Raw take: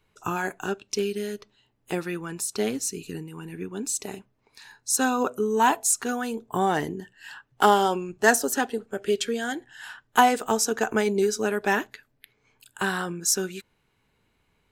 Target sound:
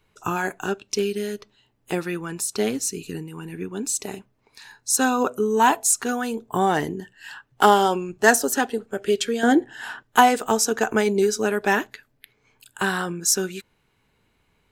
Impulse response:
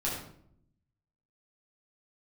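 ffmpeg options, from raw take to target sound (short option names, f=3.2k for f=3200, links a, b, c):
-filter_complex "[0:a]asettb=1/sr,asplit=3[a][b][c];[a]atrim=end=9.434[d];[b]atrim=start=9.43:end=10.03,asetpts=PTS-STARTPTS,afade=t=in:d=0.004:c=qsin,afade=t=out:st=0.596:d=0.004:c=qsin,equalizer=f=360:w=0.49:g=15[e];[c]atrim=start=10.026[f];[d][e]acrossfade=d=0.004:c1=hsin:c2=qsin[g];[g][f]acrossfade=d=0.004:c1=qsin:c2=hsin,volume=3dB"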